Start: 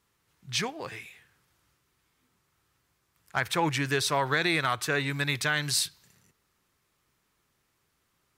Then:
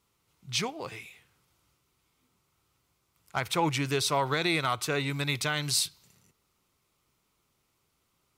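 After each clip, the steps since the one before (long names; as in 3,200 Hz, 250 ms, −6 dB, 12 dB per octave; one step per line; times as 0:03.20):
parametric band 1,700 Hz −12.5 dB 0.24 octaves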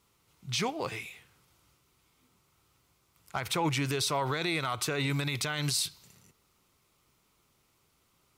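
brickwall limiter −24 dBFS, peak gain reduction 10 dB
level +4 dB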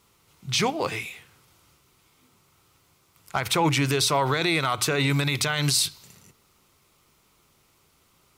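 mains-hum notches 60/120/180/240/300 Hz
level +7.5 dB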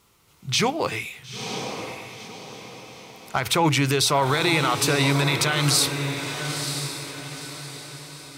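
feedback delay with all-pass diffusion 960 ms, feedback 43%, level −7 dB
level +2 dB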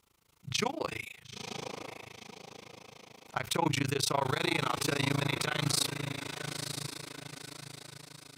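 amplitude modulation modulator 27 Hz, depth 100%
level −6 dB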